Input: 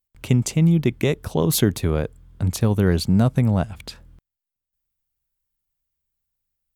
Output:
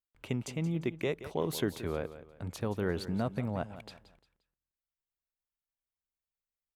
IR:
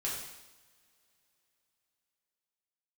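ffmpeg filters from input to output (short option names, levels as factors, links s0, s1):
-filter_complex "[0:a]bass=f=250:g=-10,treble=f=4000:g=-10,asplit=2[s0][s1];[s1]aecho=0:1:175|350|525:0.2|0.0698|0.0244[s2];[s0][s2]amix=inputs=2:normalize=0,volume=0.355"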